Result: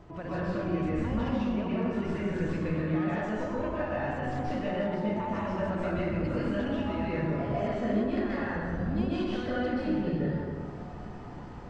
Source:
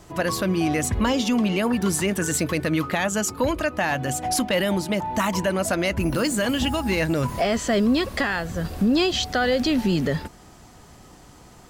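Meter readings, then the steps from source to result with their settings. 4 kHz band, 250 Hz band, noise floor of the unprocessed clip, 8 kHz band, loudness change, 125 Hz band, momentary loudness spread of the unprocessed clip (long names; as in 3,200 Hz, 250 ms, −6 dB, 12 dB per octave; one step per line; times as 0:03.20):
−19.0 dB, −6.5 dB, −48 dBFS, below −30 dB, −8.0 dB, −4.5 dB, 4 LU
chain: stylus tracing distortion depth 0.09 ms
downward compressor 2.5 to 1, threshold −40 dBFS, peak gain reduction 15 dB
head-to-tape spacing loss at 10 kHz 33 dB
dense smooth reverb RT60 2 s, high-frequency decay 0.5×, pre-delay 115 ms, DRR −9 dB
level −2 dB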